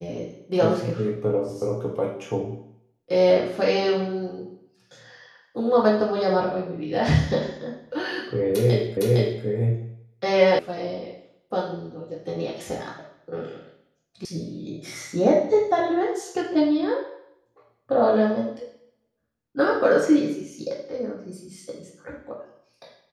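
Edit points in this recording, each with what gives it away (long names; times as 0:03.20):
0:08.97: the same again, the last 0.46 s
0:10.59: cut off before it has died away
0:14.25: cut off before it has died away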